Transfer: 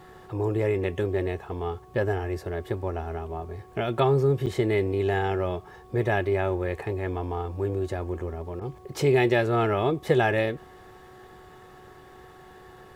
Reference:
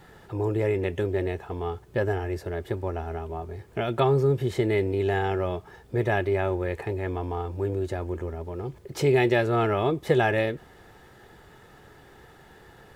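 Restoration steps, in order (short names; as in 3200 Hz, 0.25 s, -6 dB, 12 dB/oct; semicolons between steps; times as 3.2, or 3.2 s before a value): de-hum 369.9 Hz, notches 3; interpolate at 4.46, 7 ms; interpolate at 8.6, 12 ms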